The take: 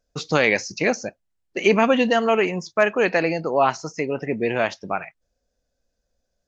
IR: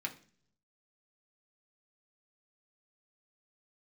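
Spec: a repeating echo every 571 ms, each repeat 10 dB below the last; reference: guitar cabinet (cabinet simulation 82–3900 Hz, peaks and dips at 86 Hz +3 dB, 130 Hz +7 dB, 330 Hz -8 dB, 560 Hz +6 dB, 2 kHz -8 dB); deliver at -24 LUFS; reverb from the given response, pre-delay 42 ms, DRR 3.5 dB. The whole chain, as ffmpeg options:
-filter_complex "[0:a]aecho=1:1:571|1142|1713|2284:0.316|0.101|0.0324|0.0104,asplit=2[s0][s1];[1:a]atrim=start_sample=2205,adelay=42[s2];[s1][s2]afir=irnorm=-1:irlink=0,volume=0.562[s3];[s0][s3]amix=inputs=2:normalize=0,highpass=82,equalizer=f=86:t=q:w=4:g=3,equalizer=f=130:t=q:w=4:g=7,equalizer=f=330:t=q:w=4:g=-8,equalizer=f=560:t=q:w=4:g=6,equalizer=f=2000:t=q:w=4:g=-8,lowpass=f=3900:w=0.5412,lowpass=f=3900:w=1.3066,volume=0.631"

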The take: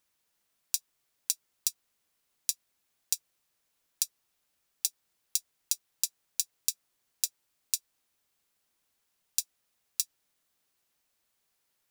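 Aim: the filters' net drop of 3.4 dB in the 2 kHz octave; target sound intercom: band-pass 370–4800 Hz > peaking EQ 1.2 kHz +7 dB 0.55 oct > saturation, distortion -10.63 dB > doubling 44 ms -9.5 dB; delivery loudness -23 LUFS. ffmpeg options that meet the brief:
-filter_complex "[0:a]highpass=370,lowpass=4800,equalizer=f=1200:t=o:w=0.55:g=7,equalizer=f=2000:t=o:g=-5.5,asoftclip=threshold=0.0631,asplit=2[s0][s1];[s1]adelay=44,volume=0.335[s2];[s0][s2]amix=inputs=2:normalize=0,volume=11.2"

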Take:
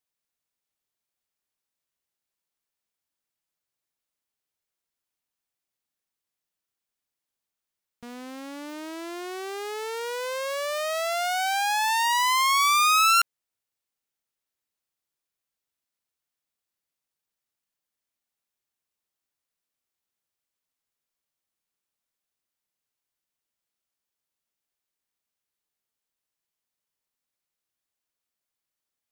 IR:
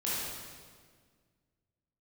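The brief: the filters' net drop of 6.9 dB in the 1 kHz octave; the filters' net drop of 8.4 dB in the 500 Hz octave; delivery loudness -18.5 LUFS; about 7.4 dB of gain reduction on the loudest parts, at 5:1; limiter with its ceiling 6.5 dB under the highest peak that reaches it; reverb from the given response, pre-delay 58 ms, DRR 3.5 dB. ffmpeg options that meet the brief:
-filter_complex "[0:a]equalizer=f=500:t=o:g=-8.5,equalizer=f=1000:t=o:g=-7,acompressor=threshold=0.0501:ratio=5,alimiter=level_in=1.26:limit=0.0631:level=0:latency=1,volume=0.794,asplit=2[s0][s1];[1:a]atrim=start_sample=2205,adelay=58[s2];[s1][s2]afir=irnorm=-1:irlink=0,volume=0.316[s3];[s0][s3]amix=inputs=2:normalize=0,volume=6.68"

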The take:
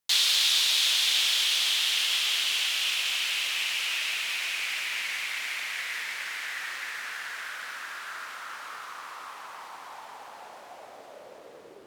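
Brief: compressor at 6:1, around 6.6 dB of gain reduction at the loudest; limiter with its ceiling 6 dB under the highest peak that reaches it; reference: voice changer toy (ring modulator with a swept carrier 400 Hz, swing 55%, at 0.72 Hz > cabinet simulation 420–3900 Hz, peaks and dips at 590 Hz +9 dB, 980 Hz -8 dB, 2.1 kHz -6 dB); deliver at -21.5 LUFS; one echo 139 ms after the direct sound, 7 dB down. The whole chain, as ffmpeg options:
-af "acompressor=threshold=0.0447:ratio=6,alimiter=limit=0.0708:level=0:latency=1,aecho=1:1:139:0.447,aeval=exprs='val(0)*sin(2*PI*400*n/s+400*0.55/0.72*sin(2*PI*0.72*n/s))':c=same,highpass=420,equalizer=f=590:t=q:w=4:g=9,equalizer=f=980:t=q:w=4:g=-8,equalizer=f=2100:t=q:w=4:g=-6,lowpass=f=3900:w=0.5412,lowpass=f=3900:w=1.3066,volume=5.96"

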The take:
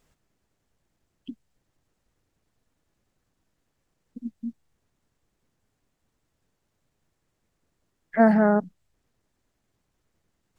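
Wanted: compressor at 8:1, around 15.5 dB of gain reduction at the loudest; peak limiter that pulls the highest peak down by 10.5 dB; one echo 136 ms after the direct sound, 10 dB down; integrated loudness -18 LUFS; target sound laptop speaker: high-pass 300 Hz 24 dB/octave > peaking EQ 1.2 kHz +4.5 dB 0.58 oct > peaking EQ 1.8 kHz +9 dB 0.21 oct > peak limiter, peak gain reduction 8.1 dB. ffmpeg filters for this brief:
-af "acompressor=threshold=0.0355:ratio=8,alimiter=level_in=2:limit=0.0631:level=0:latency=1,volume=0.501,highpass=f=300:w=0.5412,highpass=f=300:w=1.3066,equalizer=f=1200:t=o:w=0.58:g=4.5,equalizer=f=1800:t=o:w=0.21:g=9,aecho=1:1:136:0.316,volume=26.6,alimiter=limit=0.631:level=0:latency=1"

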